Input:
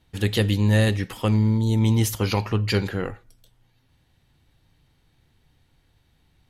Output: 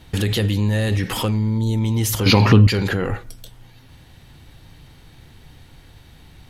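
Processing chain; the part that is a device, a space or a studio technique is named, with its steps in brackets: loud club master (compressor 3:1, threshold -23 dBFS, peak gain reduction 7 dB; hard clip -17 dBFS, distortion -28 dB; maximiser +29 dB); 2.26–2.67 ten-band EQ 125 Hz +7 dB, 250 Hz +11 dB, 500 Hz +4 dB, 1000 Hz +4 dB, 2000 Hz +5 dB, 4000 Hz +9 dB; gain -12 dB

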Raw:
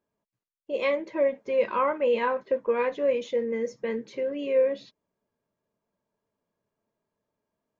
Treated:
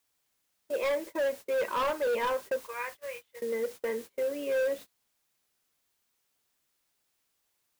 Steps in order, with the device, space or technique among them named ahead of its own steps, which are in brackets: 2.65–3.42 HPF 1300 Hz 12 dB/oct; aircraft radio (BPF 380–2500 Hz; hard clip -25.5 dBFS, distortion -9 dB; white noise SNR 17 dB; gate -41 dBFS, range -26 dB)

